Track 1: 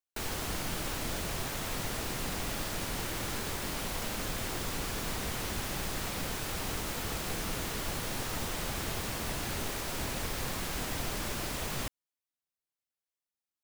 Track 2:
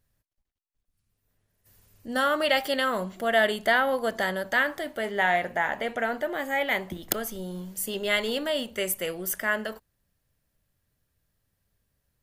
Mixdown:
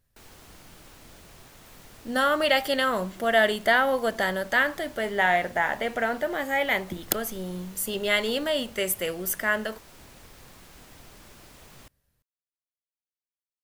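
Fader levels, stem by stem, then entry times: -14.5, +1.5 dB; 0.00, 0.00 s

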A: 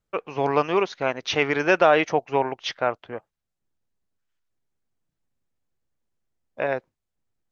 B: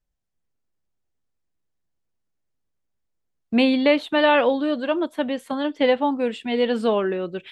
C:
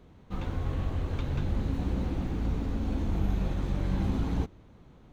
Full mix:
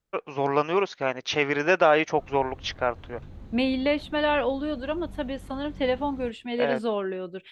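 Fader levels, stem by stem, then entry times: -2.0, -6.5, -14.0 dB; 0.00, 0.00, 1.85 s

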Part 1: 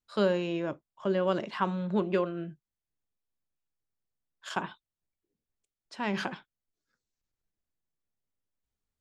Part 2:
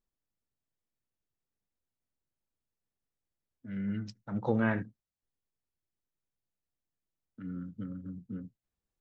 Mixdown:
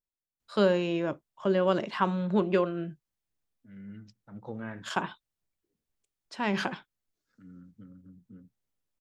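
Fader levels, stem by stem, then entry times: +2.5, -10.5 dB; 0.40, 0.00 s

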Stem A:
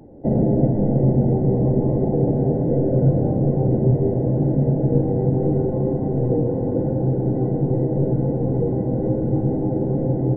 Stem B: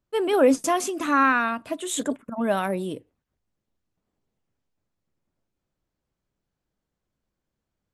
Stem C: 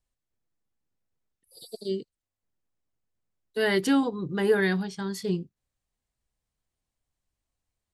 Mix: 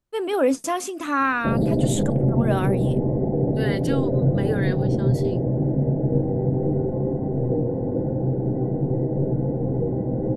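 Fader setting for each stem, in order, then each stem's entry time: -3.0, -2.0, -5.0 dB; 1.20, 0.00, 0.00 s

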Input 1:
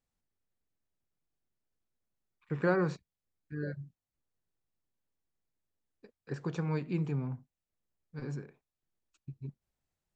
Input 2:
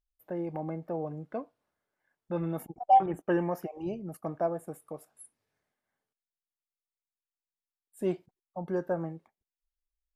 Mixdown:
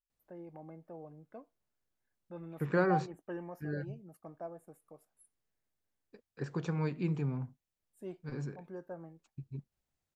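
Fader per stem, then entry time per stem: -0.5, -14.0 dB; 0.10, 0.00 s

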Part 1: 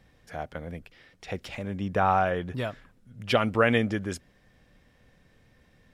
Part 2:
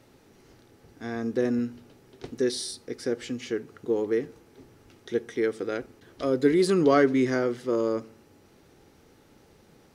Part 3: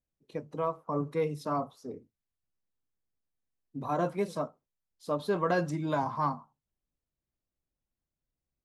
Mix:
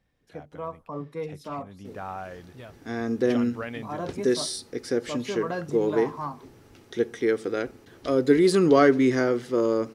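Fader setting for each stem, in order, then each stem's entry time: -13.0, +2.5, -3.5 dB; 0.00, 1.85, 0.00 s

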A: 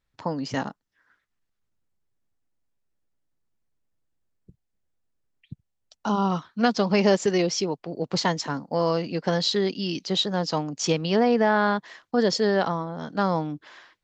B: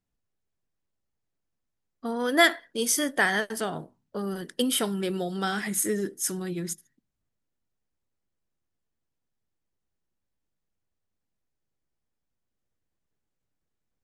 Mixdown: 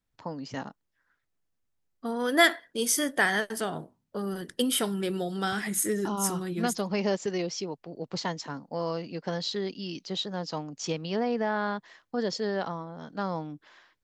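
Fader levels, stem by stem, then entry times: -8.0, -1.0 dB; 0.00, 0.00 s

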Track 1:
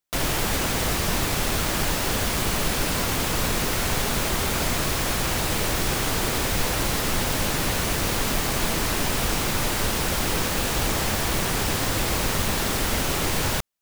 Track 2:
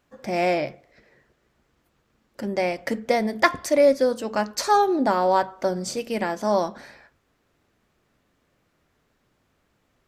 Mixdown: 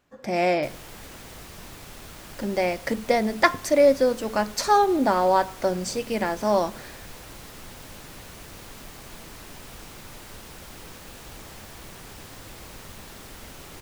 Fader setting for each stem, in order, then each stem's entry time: -18.5, 0.0 dB; 0.50, 0.00 s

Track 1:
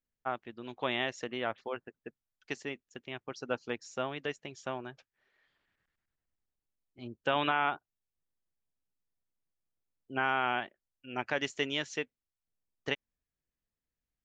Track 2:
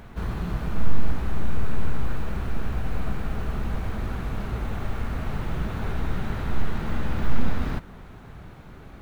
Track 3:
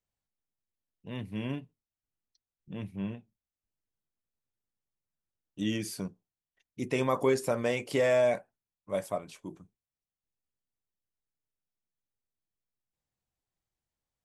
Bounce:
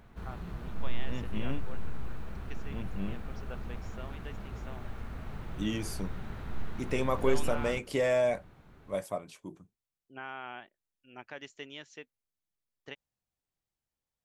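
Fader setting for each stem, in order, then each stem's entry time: -12.0, -12.0, -2.0 dB; 0.00, 0.00, 0.00 s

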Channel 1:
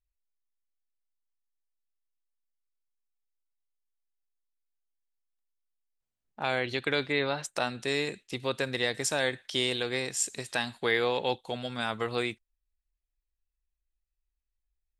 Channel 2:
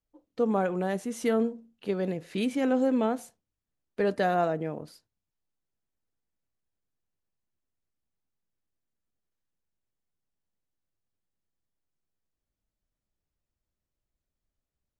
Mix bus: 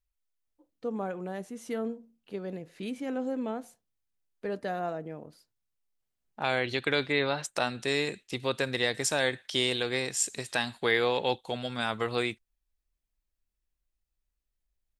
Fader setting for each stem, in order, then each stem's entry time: +1.0, -7.5 dB; 0.00, 0.45 s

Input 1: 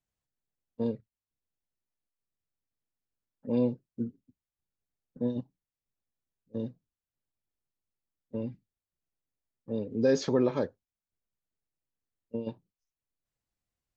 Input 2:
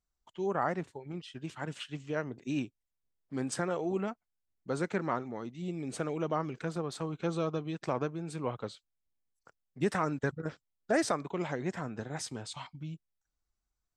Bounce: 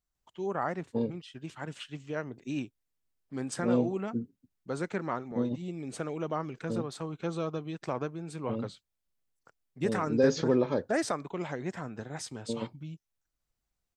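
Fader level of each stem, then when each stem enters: 0.0, -1.0 dB; 0.15, 0.00 s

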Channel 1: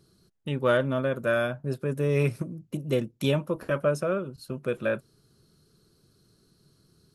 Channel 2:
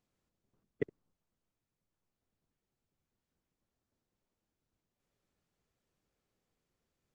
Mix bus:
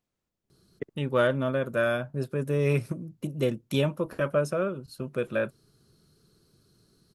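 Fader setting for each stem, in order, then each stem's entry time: -0.5, -1.0 dB; 0.50, 0.00 s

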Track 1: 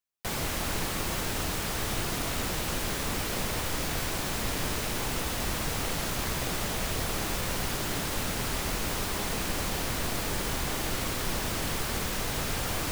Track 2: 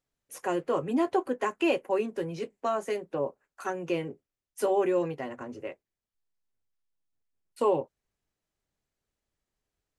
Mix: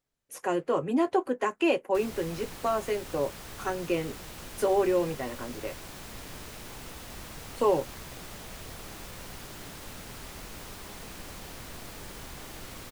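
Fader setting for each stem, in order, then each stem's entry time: -12.0, +1.0 dB; 1.70, 0.00 s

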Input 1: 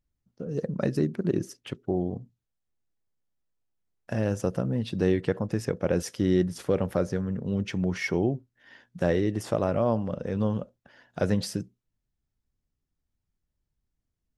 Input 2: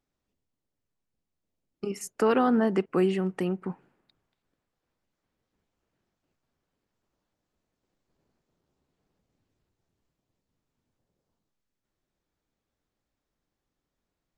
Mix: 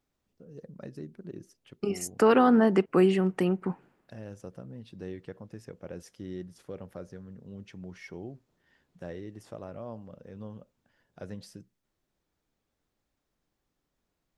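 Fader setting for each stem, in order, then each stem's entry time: -16.0, +2.5 dB; 0.00, 0.00 s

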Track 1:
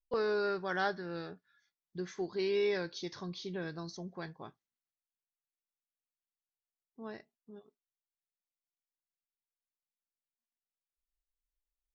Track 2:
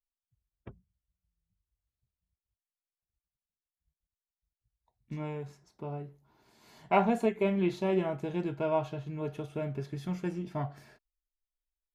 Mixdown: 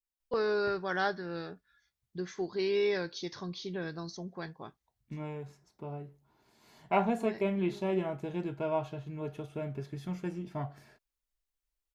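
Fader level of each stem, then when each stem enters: +2.0, -2.5 dB; 0.20, 0.00 s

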